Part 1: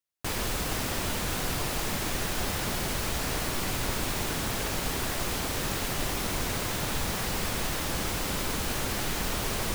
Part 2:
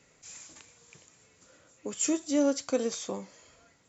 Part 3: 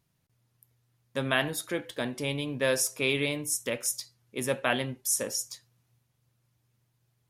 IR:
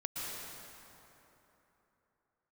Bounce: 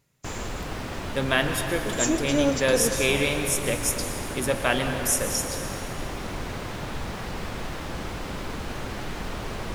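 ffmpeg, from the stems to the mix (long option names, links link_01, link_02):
-filter_complex "[0:a]aemphasis=mode=reproduction:type=75kf,volume=-0.5dB[link_01];[1:a]agate=range=-16dB:threshold=-55dB:ratio=16:detection=peak,volume=3dB[link_02];[2:a]volume=0.5dB,asplit=2[link_03][link_04];[link_04]volume=-4.5dB[link_05];[3:a]atrim=start_sample=2205[link_06];[link_05][link_06]afir=irnorm=-1:irlink=0[link_07];[link_01][link_02][link_03][link_07]amix=inputs=4:normalize=0"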